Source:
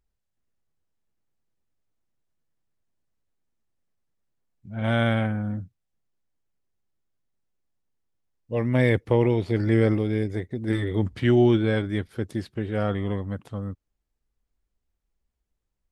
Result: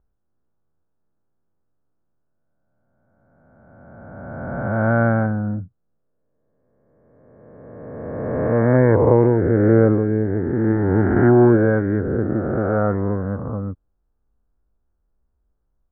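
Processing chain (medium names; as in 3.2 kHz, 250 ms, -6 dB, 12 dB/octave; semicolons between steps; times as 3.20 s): reverse spectral sustain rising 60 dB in 2.31 s; elliptic low-pass 1.5 kHz, stop band 80 dB; tape noise reduction on one side only decoder only; trim +5.5 dB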